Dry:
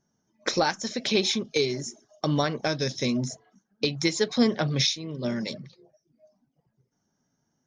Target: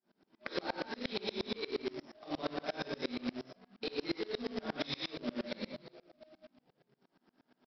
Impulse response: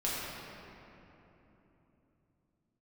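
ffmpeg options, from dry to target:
-filter_complex "[0:a]asplit=2[s0][s1];[s1]acrusher=samples=27:mix=1:aa=0.000001:lfo=1:lforange=43.2:lforate=0.37,volume=0.316[s2];[s0][s2]amix=inputs=2:normalize=0,highpass=f=220:w=0.5412,highpass=f=220:w=1.3066[s3];[1:a]atrim=start_sample=2205,afade=t=out:st=0.29:d=0.01,atrim=end_sample=13230[s4];[s3][s4]afir=irnorm=-1:irlink=0,aresample=11025,acrusher=bits=2:mode=log:mix=0:aa=0.000001,aresample=44100,alimiter=limit=0.211:level=0:latency=1:release=103,acompressor=threshold=0.01:ratio=3,aeval=exprs='val(0)*pow(10,-28*if(lt(mod(-8.5*n/s,1),2*abs(-8.5)/1000),1-mod(-8.5*n/s,1)/(2*abs(-8.5)/1000),(mod(-8.5*n/s,1)-2*abs(-8.5)/1000)/(1-2*abs(-8.5)/1000))/20)':c=same,volume=2.11"

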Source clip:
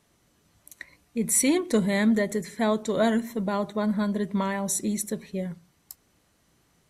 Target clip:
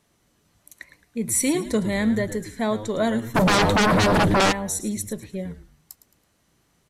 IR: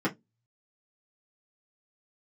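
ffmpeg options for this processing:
-filter_complex "[0:a]asplit=2[s0][s1];[s1]asplit=3[s2][s3][s4];[s2]adelay=109,afreqshift=-110,volume=0.224[s5];[s3]adelay=218,afreqshift=-220,volume=0.0759[s6];[s4]adelay=327,afreqshift=-330,volume=0.026[s7];[s5][s6][s7]amix=inputs=3:normalize=0[s8];[s0][s8]amix=inputs=2:normalize=0,asplit=3[s9][s10][s11];[s9]afade=t=out:st=3.34:d=0.02[s12];[s10]aeval=exprs='0.188*sin(PI/2*6.31*val(0)/0.188)':c=same,afade=t=in:st=3.34:d=0.02,afade=t=out:st=4.51:d=0.02[s13];[s11]afade=t=in:st=4.51:d=0.02[s14];[s12][s13][s14]amix=inputs=3:normalize=0"

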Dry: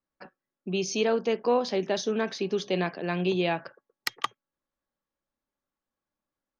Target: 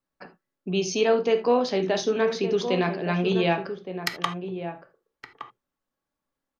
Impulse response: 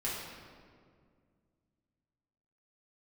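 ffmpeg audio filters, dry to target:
-filter_complex "[0:a]asplit=2[s0][s1];[s1]adelay=1166,volume=0.355,highshelf=f=4000:g=-26.2[s2];[s0][s2]amix=inputs=2:normalize=0,asplit=2[s3][s4];[1:a]atrim=start_sample=2205,atrim=end_sample=3969,highshelf=f=7000:g=-10[s5];[s4][s5]afir=irnorm=-1:irlink=0,volume=0.531[s6];[s3][s6]amix=inputs=2:normalize=0"

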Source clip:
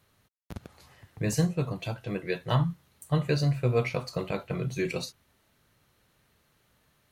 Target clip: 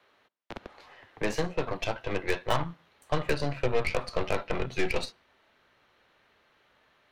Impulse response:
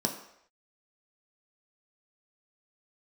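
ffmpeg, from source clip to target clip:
-filter_complex "[0:a]acrossover=split=200[s0][s1];[s1]acompressor=threshold=0.0355:ratio=5[s2];[s0][s2]amix=inputs=2:normalize=0,acrossover=split=320 4100:gain=0.0708 1 0.0708[s3][s4][s5];[s3][s4][s5]amix=inputs=3:normalize=0,aeval=exprs='0.0794*(cos(1*acos(clip(val(0)/0.0794,-1,1)))-cos(1*PI/2))+0.00891*(cos(8*acos(clip(val(0)/0.0794,-1,1)))-cos(8*PI/2))':c=same,asubboost=boost=2.5:cutoff=180,asplit=2[s6][s7];[1:a]atrim=start_sample=2205,afade=t=out:st=0.25:d=0.01,atrim=end_sample=11466[s8];[s7][s8]afir=irnorm=-1:irlink=0,volume=0.0447[s9];[s6][s9]amix=inputs=2:normalize=0,volume=2.11"

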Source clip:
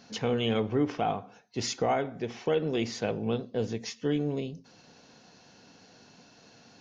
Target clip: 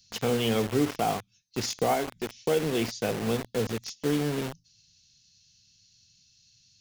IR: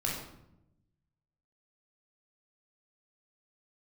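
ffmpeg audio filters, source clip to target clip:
-filter_complex "[0:a]asettb=1/sr,asplit=3[s0][s1][s2];[s0]atrim=end=1.944[s3];[s1]atrim=start=1.94:end=2.39,asetpts=PTS-STARTPTS,afade=t=in:d=0.004:c=qsin,afade=t=out:st=0.446:d=0.004:c=qsin,equalizer=f=125:t=o:w=0.33:g=-11,equalizer=f=500:t=o:w=0.33:g=-5,equalizer=f=1250:t=o:w=0.33:g=-9[s4];[s2]atrim=start=2.386[s5];[s3][s4]acrossfade=d=0.004:c1=hsin:c2=qsin[s6];[s6][s5]acrossfade=d=0.004:c1=qsin:c2=hsin,acrossover=split=110|3400[s7][s8][s9];[s8]acrusher=bits=5:mix=0:aa=0.000001[s10];[s7][s10][s9]amix=inputs=3:normalize=0,volume=1.19"

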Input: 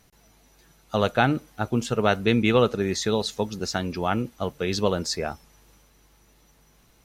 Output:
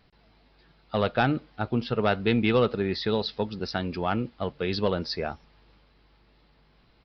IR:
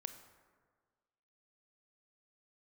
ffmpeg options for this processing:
-af "aresample=11025,asoftclip=type=tanh:threshold=0.299,aresample=44100,volume=0.841"

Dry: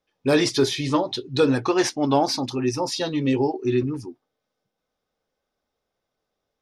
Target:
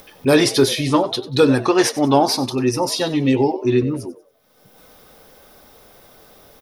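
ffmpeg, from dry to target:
-filter_complex "[0:a]aexciter=amount=4.3:drive=2.4:freq=9400,acompressor=mode=upward:threshold=0.0282:ratio=2.5,asplit=4[s0][s1][s2][s3];[s1]adelay=94,afreqshift=100,volume=0.141[s4];[s2]adelay=188,afreqshift=200,volume=0.0468[s5];[s3]adelay=282,afreqshift=300,volume=0.0153[s6];[s0][s4][s5][s6]amix=inputs=4:normalize=0,volume=1.78"

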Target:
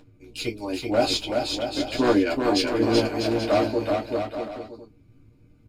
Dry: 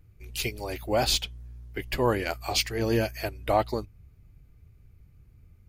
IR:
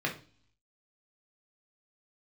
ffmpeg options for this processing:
-filter_complex "[0:a]aphaser=in_gain=1:out_gain=1:delay=1.6:decay=0.24:speed=0.43:type=sinusoidal,acompressor=mode=upward:threshold=0.00708:ratio=2.5,lowshelf=f=400:g=9,aeval=exprs='0.562*(cos(1*acos(clip(val(0)/0.562,-1,1)))-cos(1*PI/2))+0.0501*(cos(3*acos(clip(val(0)/0.562,-1,1)))-cos(3*PI/2))':c=same,aeval=exprs='0.188*(abs(mod(val(0)/0.188+3,4)-2)-1)':c=same,aecho=1:1:380|646|832.2|962.5|1054:0.631|0.398|0.251|0.158|0.1[s0];[1:a]atrim=start_sample=2205,atrim=end_sample=3528,asetrate=88200,aresample=44100[s1];[s0][s1]afir=irnorm=-1:irlink=0"

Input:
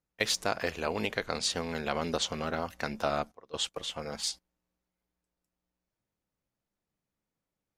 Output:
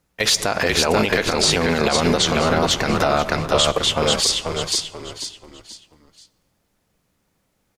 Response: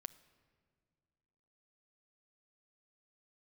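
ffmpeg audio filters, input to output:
-filter_complex "[0:a]asplit=5[s0][s1][s2][s3][s4];[s1]adelay=486,afreqshift=-57,volume=0.501[s5];[s2]adelay=972,afreqshift=-114,volume=0.17[s6];[s3]adelay=1458,afreqshift=-171,volume=0.0582[s7];[s4]adelay=1944,afreqshift=-228,volume=0.0197[s8];[s0][s5][s6][s7][s8]amix=inputs=5:normalize=0,asplit=2[s9][s10];[1:a]atrim=start_sample=2205,afade=t=out:st=0.4:d=0.01,atrim=end_sample=18081,asetrate=26460,aresample=44100[s11];[s10][s11]afir=irnorm=-1:irlink=0,volume=2.37[s12];[s9][s12]amix=inputs=2:normalize=0,alimiter=level_in=5.62:limit=0.891:release=50:level=0:latency=1,volume=0.531"

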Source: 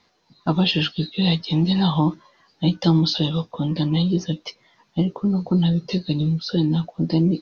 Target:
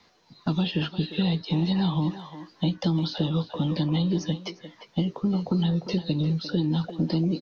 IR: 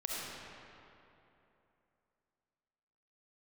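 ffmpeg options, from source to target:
-filter_complex "[0:a]acrossover=split=310|2200[s0][s1][s2];[s1]alimiter=limit=0.0891:level=0:latency=1:release=234[s3];[s0][s3][s2]amix=inputs=3:normalize=0,acrossover=split=510|1900[s4][s5][s6];[s4]acompressor=threshold=0.0501:ratio=4[s7];[s5]acompressor=threshold=0.01:ratio=4[s8];[s6]acompressor=threshold=0.00891:ratio=4[s9];[s7][s8][s9]amix=inputs=3:normalize=0,asplit=2[s10][s11];[s11]adelay=350,highpass=300,lowpass=3400,asoftclip=type=hard:threshold=0.0596,volume=0.355[s12];[s10][s12]amix=inputs=2:normalize=0,volume=1.33"

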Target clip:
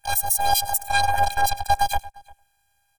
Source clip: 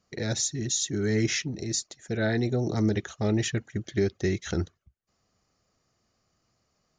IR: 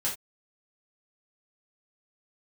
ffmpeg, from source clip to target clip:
-filter_complex "[0:a]asplit=4[s0][s1][s2][s3];[s1]asetrate=22050,aresample=44100,atempo=2,volume=0.178[s4];[s2]asetrate=29433,aresample=44100,atempo=1.49831,volume=0.708[s5];[s3]asetrate=88200,aresample=44100,atempo=0.5,volume=0.2[s6];[s0][s4][s5][s6]amix=inputs=4:normalize=0,asplit=2[s7][s8];[s8]aecho=0:1:241:0.106[s9];[s7][s9]amix=inputs=2:normalize=0,afftfilt=real='hypot(re,im)*cos(PI*b)':imag='0':win_size=512:overlap=0.75,asetrate=103194,aresample=44100,equalizer=f=250:w=1.3:g=-15,asplit=2[s10][s11];[s11]adelay=349.9,volume=0.0794,highshelf=f=4000:g=-7.87[s12];[s10][s12]amix=inputs=2:normalize=0,asplit=2[s13][s14];[s14]aeval=exprs='sgn(val(0))*max(abs(val(0))-0.00794,0)':c=same,volume=0.299[s15];[s13][s15]amix=inputs=2:normalize=0,volume=2.51"

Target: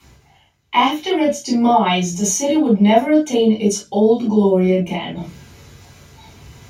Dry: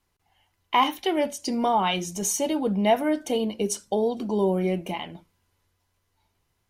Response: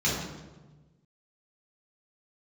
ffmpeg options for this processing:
-filter_complex "[0:a]areverse,acompressor=mode=upward:threshold=0.0316:ratio=2.5,areverse[s0];[1:a]atrim=start_sample=2205,atrim=end_sample=3087[s1];[s0][s1]afir=irnorm=-1:irlink=0,volume=0.668"

